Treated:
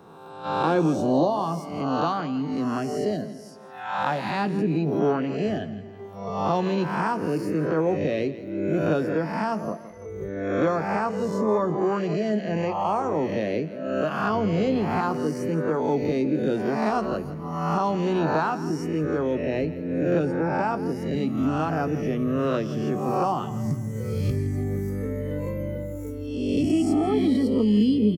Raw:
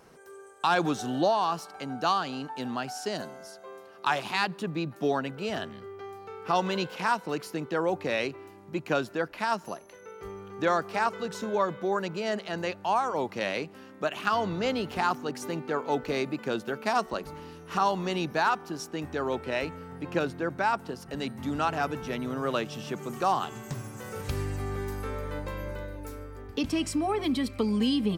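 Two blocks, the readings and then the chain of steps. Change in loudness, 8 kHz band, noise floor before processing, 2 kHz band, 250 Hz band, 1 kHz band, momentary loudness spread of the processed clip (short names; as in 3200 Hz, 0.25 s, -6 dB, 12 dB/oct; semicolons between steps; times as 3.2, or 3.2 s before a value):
+5.0 dB, n/a, -50 dBFS, -1.0 dB, +8.5 dB, +1.5 dB, 9 LU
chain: spectral swells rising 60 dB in 1.21 s; HPF 100 Hz; spectral noise reduction 13 dB; tilt shelf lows +9 dB, about 640 Hz; doubler 19 ms -11.5 dB; feedback echo 0.166 s, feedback 40%, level -16.5 dB; three-band squash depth 40%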